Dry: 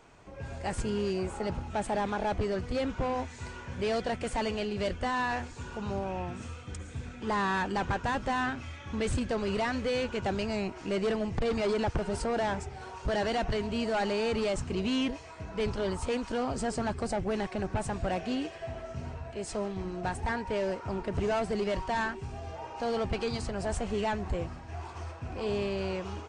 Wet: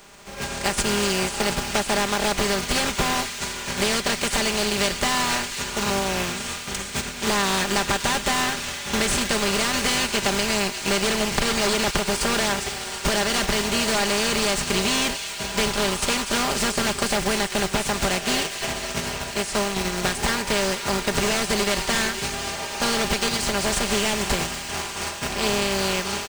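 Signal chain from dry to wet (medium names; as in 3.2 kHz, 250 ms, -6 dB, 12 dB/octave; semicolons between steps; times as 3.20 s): spectral contrast reduction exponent 0.45; in parallel at -8 dB: bit crusher 5-bit; on the sum: comb 5 ms; compression, threshold -27 dBFS, peak gain reduction 8 dB; feedback echo behind a high-pass 242 ms, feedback 80%, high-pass 2.1 kHz, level -10 dB; trim +8 dB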